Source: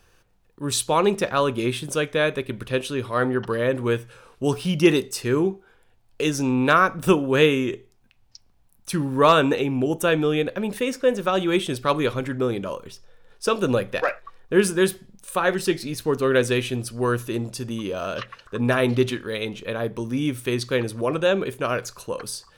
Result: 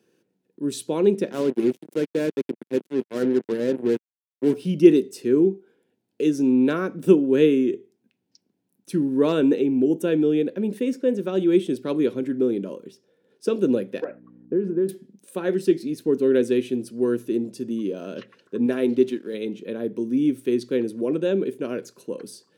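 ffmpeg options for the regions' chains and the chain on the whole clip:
-filter_complex "[0:a]asettb=1/sr,asplit=3[a][b][c];[a]atrim=end=1.324[d];[b]atrim=start=1.32:end=4.55,asetpts=PTS-STARTPTS,afade=t=in:d=0.004:c=qsin,afade=t=out:st=3.226:d=0.004:c=qsin,equalizer=f=5k:t=o:w=1.5:g=-10.5,acrusher=bits=3:mix=0:aa=0.5[e];[c]atrim=start=4.546[f];[d][e]acrossfade=d=0.004:c1=hsin:c2=qsin[g];[g][f]acrossfade=d=0.004:c1=qsin:c2=hsin,asettb=1/sr,asplit=3[h][i][j];[h]atrim=end=14.044[k];[i]atrim=start=14.04:end=14.89,asetpts=PTS-STARTPTS,afade=t=in:d=0.004:c=qsin,afade=t=out:st=0.846:d=0.004:c=qsin,lowpass=1.2k,acompressor=threshold=-21dB:ratio=6:attack=3.2:release=140:knee=1:detection=peak,aeval=exprs='val(0)+0.00708*(sin(2*PI*60*n/s)+sin(2*PI*2*60*n/s)/2+sin(2*PI*3*60*n/s)/3+sin(2*PI*4*60*n/s)/4+sin(2*PI*5*60*n/s)/5)':c=same[l];[j]atrim=start=14.886[m];[k][l]acrossfade=d=0.004:c1=hsin:c2=qsin[n];[n][m]acrossfade=d=0.004:c1=qsin:c2=hsin,asettb=1/sr,asplit=3[o][p][q];[o]atrim=end=18.664[r];[p]atrim=start=18.66:end=19.34,asetpts=PTS-STARTPTS,afade=t=in:d=0.004:c=qsin,afade=t=out:st=0.676:d=0.004:c=qsin,lowshelf=f=110:g=-11,aeval=exprs='sgn(val(0))*max(abs(val(0))-0.00447,0)':c=same[s];[q]atrim=start=19.336[t];[r][s]acrossfade=d=0.004:c1=hsin:c2=qsin[u];[u][t]acrossfade=d=0.004:c1=qsin:c2=hsin,highpass=f=190:w=0.5412,highpass=f=190:w=1.3066,lowshelf=f=530:t=q:w=1.5:g=12.5,bandreject=f=1.2k:w=6.1,volume=-10.5dB"

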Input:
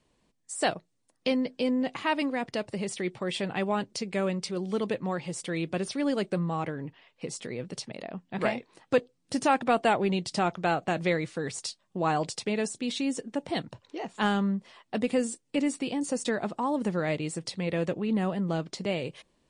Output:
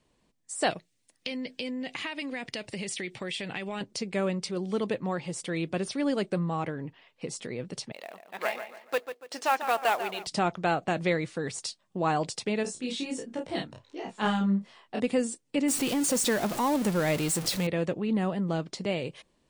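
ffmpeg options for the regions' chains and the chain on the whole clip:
-filter_complex "[0:a]asettb=1/sr,asplit=3[a][b][c];[a]atrim=end=0.704[d];[b]atrim=start=0.7:end=3.81,asetpts=PTS-STARTPTS,afade=t=in:d=0.004:c=qsin,afade=t=out:st=3.106:d=0.004:c=qsin,highshelf=f=1.6k:t=q:w=1.5:g=7,acompressor=threshold=-31dB:ratio=6:attack=3.2:release=140:knee=1:detection=peak[e];[c]atrim=start=3.806[f];[d][e]acrossfade=d=0.004:c1=hsin:c2=qsin[g];[g][f]acrossfade=d=0.004:c1=qsin:c2=hsin,asettb=1/sr,asplit=3[h][i][j];[h]atrim=end=7.924[k];[i]atrim=start=7.92:end=10.27,asetpts=PTS-STARTPTS,afade=t=in:d=0.004:c=qsin,afade=t=out:st=2.346:d=0.004:c=qsin,highpass=650,lowpass=6.7k,asplit=2[l][m];[m]adelay=143,lowpass=f=3.5k:p=1,volume=-9.5dB,asplit=2[n][o];[o]adelay=143,lowpass=f=3.5k:p=1,volume=0.37,asplit=2[p][q];[q]adelay=143,lowpass=f=3.5k:p=1,volume=0.37,asplit=2[r][s];[s]adelay=143,lowpass=f=3.5k:p=1,volume=0.37[t];[l][n][p][r][t]amix=inputs=5:normalize=0,atrim=end_sample=103635,acrusher=bits=4:mode=log:mix=0:aa=0.000001[u];[j]atrim=start=10.266[v];[k][u]acrossfade=d=0.004:c1=hsin:c2=qsin[w];[w][v]acrossfade=d=0.004:c1=qsin:c2=hsin,asettb=1/sr,asplit=3[x][y][z];[x]atrim=end=12.634[aa];[y]atrim=start=12.63:end=15,asetpts=PTS-STARTPTS,afade=t=in:d=0.004:c=qsin,afade=t=out:st=2.366:d=0.004:c=qsin,flanger=delay=16:depth=5.5:speed=1.4,asplit=2[ab][ac];[ac]adelay=31,volume=-3.5dB[ad];[ab][ad]amix=inputs=2:normalize=0,atrim=end_sample=104517[ae];[z]atrim=start=14.996[af];[aa][ae]acrossfade=d=0.004:c1=hsin:c2=qsin[ag];[ag][af]acrossfade=d=0.004:c1=qsin:c2=hsin,asettb=1/sr,asplit=3[ah][ai][aj];[ah]atrim=end=15.684[ak];[ai]atrim=start=15.68:end=17.67,asetpts=PTS-STARTPTS,afade=t=in:d=0.004:c=qsin,afade=t=out:st=1.986:d=0.004:c=qsin,aeval=exprs='val(0)+0.5*0.0266*sgn(val(0))':c=same,highshelf=f=5.1k:g=7[al];[aj]atrim=start=17.666[am];[ak][al]acrossfade=d=0.004:c1=hsin:c2=qsin[an];[an][am]acrossfade=d=0.004:c1=qsin:c2=hsin"

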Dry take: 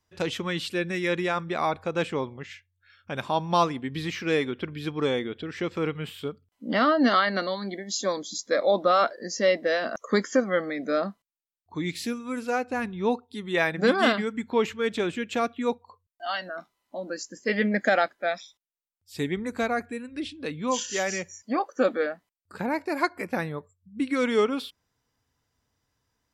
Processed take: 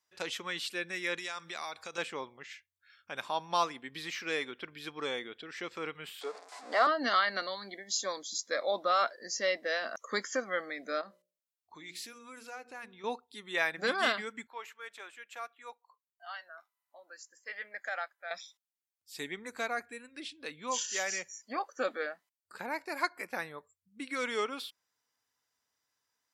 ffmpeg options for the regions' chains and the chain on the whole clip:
-filter_complex "[0:a]asettb=1/sr,asplit=3[a][b][c];[a]atrim=end=1.184[d];[b]atrim=start=1.18:end=1.98,asetpts=PTS-STARTPTS,afade=t=in:d=0.004:c=qsin,afade=t=out:st=0.796:d=0.004:c=qsin,equalizer=f=6.5k:t=o:w=2.4:g=14.5,acompressor=threshold=-32dB:ratio=3:attack=3.2:release=140:knee=1:detection=peak[e];[c]atrim=start=1.976[f];[d][e]acrossfade=d=0.004:c1=hsin:c2=qsin[g];[g][f]acrossfade=d=0.004:c1=qsin:c2=hsin,asettb=1/sr,asplit=3[h][i][j];[h]atrim=end=6.214[k];[i]atrim=start=6.21:end=6.87,asetpts=PTS-STARTPTS,afade=t=in:d=0.004:c=qsin,afade=t=out:st=0.656:d=0.004:c=qsin,aeval=exprs='val(0)+0.5*0.0168*sgn(val(0))':c=same,highpass=f=320:w=0.5412,highpass=f=320:w=1.3066,equalizer=f=450:t=q:w=4:g=5,equalizer=f=710:t=q:w=4:g=9,equalizer=f=1k:t=q:w=4:g=9,equalizer=f=3k:t=q:w=4:g=-8,equalizer=f=6.2k:t=q:w=4:g=-4,lowpass=f=7.8k:w=0.5412,lowpass=f=7.8k:w=1.3066,bandreject=f=950:w=8.2[l];[j]atrim=start=6.866[m];[k][l]acrossfade=d=0.004:c1=hsin:c2=qsin[n];[n][m]acrossfade=d=0.004:c1=qsin:c2=hsin,asettb=1/sr,asplit=3[o][p][q];[o]atrim=end=11.014[r];[p]atrim=start=11.01:end=13.04,asetpts=PTS-STARTPTS,afade=t=in:d=0.004:c=qsin,afade=t=out:st=2.026:d=0.004:c=qsin,bandreject=f=60:t=h:w=6,bandreject=f=120:t=h:w=6,bandreject=f=180:t=h:w=6,bandreject=f=240:t=h:w=6,bandreject=f=300:t=h:w=6,bandreject=f=360:t=h:w=6,bandreject=f=420:t=h:w=6,bandreject=f=480:t=h:w=6,bandreject=f=540:t=h:w=6,bandreject=f=600:t=h:w=6,acompressor=threshold=-37dB:ratio=2.5:attack=3.2:release=140:knee=1:detection=peak[s];[q]atrim=start=13.036[t];[r][s]acrossfade=d=0.004:c1=hsin:c2=qsin[u];[u][t]acrossfade=d=0.004:c1=qsin:c2=hsin,asettb=1/sr,asplit=3[v][w][x];[v]atrim=end=14.474[y];[w]atrim=start=14.47:end=18.31,asetpts=PTS-STARTPTS,afade=t=in:d=0.004:c=qsin,afade=t=out:st=3.836:d=0.004:c=qsin,highpass=1k,equalizer=f=4.4k:t=o:w=2.7:g=-13[z];[x]atrim=start=18.306[aa];[y][z]acrossfade=d=0.004:c1=hsin:c2=qsin[ab];[ab][aa]acrossfade=d=0.004:c1=qsin:c2=hsin,highpass=f=1.4k:p=1,equalizer=f=3k:t=o:w=0.77:g=-2.5,volume=-1.5dB"

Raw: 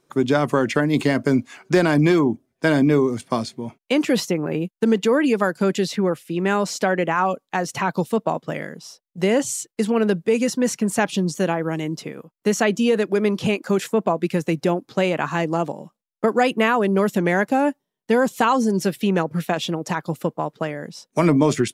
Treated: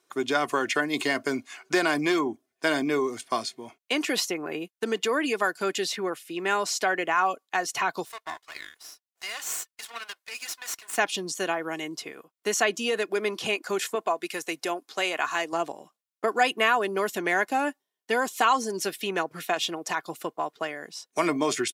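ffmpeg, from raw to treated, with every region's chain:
-filter_complex "[0:a]asettb=1/sr,asplit=3[a][b][c];[a]atrim=end=8.054[d];[b]atrim=start=8.05:end=10.98,asetpts=PTS-STARTPTS,afade=t=in:d=0.004:c=qsin,afade=t=out:st=2.926:d=0.004:c=qsin,highpass=f=860:w=0.5412,highpass=f=860:w=1.3066,aeval=exprs='max(val(0),0)':c=same[e];[c]atrim=start=10.976[f];[d][e]acrossfade=d=0.004:c1=hsin:c2=qsin[g];[g][f]acrossfade=d=0.004:c1=qsin:c2=hsin,asettb=1/sr,asplit=3[h][i][j];[h]atrim=end=13.954[k];[i]atrim=start=13.95:end=15.53,asetpts=PTS-STARTPTS,afade=t=in:d=0.004:c=qsin,afade=t=out:st=1.576:d=0.004:c=qsin,highpass=f=400:p=1,equalizer=f=10k:t=o:w=1.5:g=4[l];[j]atrim=start=15.526[m];[k][l]acrossfade=d=0.004:c1=hsin:c2=qsin[n];[n][m]acrossfade=d=0.004:c1=qsin:c2=hsin,highpass=f=1.1k:p=1,aecho=1:1:2.8:0.39"

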